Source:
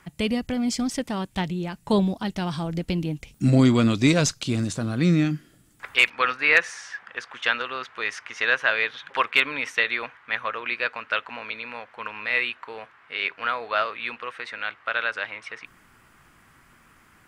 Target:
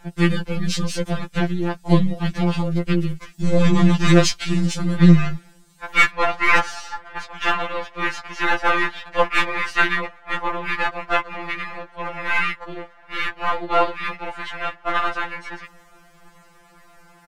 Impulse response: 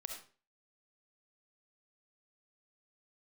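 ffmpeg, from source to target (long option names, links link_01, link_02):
-filter_complex "[0:a]aeval=exprs='if(lt(val(0),0),0.708*val(0),val(0))':channel_layout=same,asplit=2[link_01][link_02];[link_02]acontrast=78,volume=2dB[link_03];[link_01][link_03]amix=inputs=2:normalize=0,asplit=4[link_04][link_05][link_06][link_07];[link_05]asetrate=22050,aresample=44100,atempo=2,volume=-1dB[link_08];[link_06]asetrate=29433,aresample=44100,atempo=1.49831,volume=-9dB[link_09];[link_07]asetrate=35002,aresample=44100,atempo=1.25992,volume=0dB[link_10];[link_04][link_08][link_09][link_10]amix=inputs=4:normalize=0,afftfilt=real='re*2.83*eq(mod(b,8),0)':imag='im*2.83*eq(mod(b,8),0)':win_size=2048:overlap=0.75,volume=-8dB"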